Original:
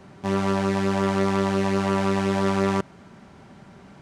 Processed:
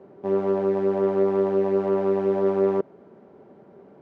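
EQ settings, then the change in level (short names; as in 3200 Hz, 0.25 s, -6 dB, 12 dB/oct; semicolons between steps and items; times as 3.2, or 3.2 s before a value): band-pass 440 Hz, Q 2.6; +7.0 dB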